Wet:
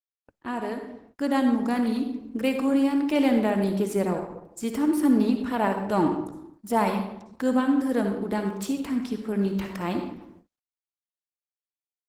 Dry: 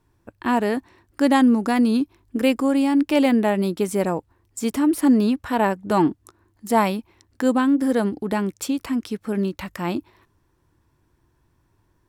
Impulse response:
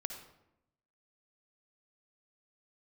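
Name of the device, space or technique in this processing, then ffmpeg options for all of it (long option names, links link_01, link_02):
speakerphone in a meeting room: -filter_complex "[1:a]atrim=start_sample=2205[link_01];[0:a][link_01]afir=irnorm=-1:irlink=0,asplit=2[link_02][link_03];[link_03]adelay=130,highpass=300,lowpass=3400,asoftclip=type=hard:threshold=-16.5dB,volume=-22dB[link_04];[link_02][link_04]amix=inputs=2:normalize=0,dynaudnorm=framelen=420:gausssize=7:maxgain=8dB,agate=range=-42dB:threshold=-41dB:ratio=16:detection=peak,volume=-8.5dB" -ar 48000 -c:a libopus -b:a 16k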